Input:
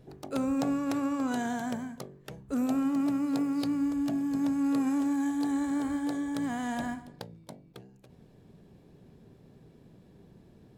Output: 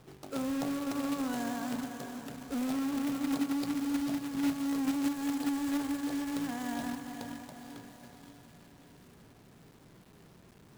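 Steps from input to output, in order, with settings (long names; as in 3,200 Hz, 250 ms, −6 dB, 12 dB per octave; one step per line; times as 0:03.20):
on a send: feedback delay with all-pass diffusion 492 ms, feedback 48%, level −7 dB
on the sum: log-companded quantiser 4 bits
level −5 dB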